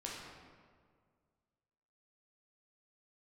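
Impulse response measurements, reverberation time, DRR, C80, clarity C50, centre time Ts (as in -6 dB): 1.9 s, -4.5 dB, 2.0 dB, -0.5 dB, 95 ms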